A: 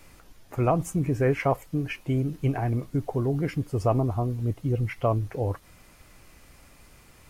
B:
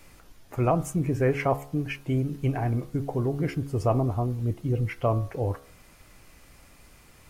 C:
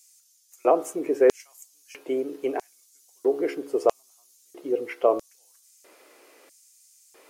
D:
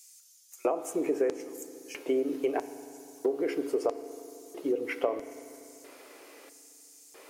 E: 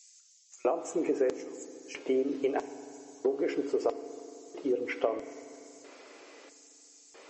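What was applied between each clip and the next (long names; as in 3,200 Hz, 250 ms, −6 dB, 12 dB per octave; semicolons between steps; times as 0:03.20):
hum removal 69.81 Hz, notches 23
low shelf with overshoot 210 Hz −10.5 dB, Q 1.5; auto-filter high-pass square 0.77 Hz 430–6,600 Hz
downward compressor 12 to 1, threshold −27 dBFS, peak gain reduction 14.5 dB; convolution reverb RT60 2.9 s, pre-delay 4 ms, DRR 11.5 dB; level +2.5 dB
MP3 32 kbit/s 32,000 Hz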